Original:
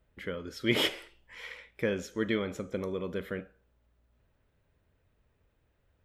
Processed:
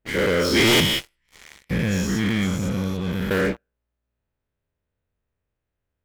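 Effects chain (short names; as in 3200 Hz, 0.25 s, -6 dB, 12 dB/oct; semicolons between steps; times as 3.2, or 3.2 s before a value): spectral dilation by 0.24 s; 0.8–3.31 EQ curve 180 Hz 0 dB, 420 Hz -19 dB, 5400 Hz -8 dB; sample leveller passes 5; gain -5.5 dB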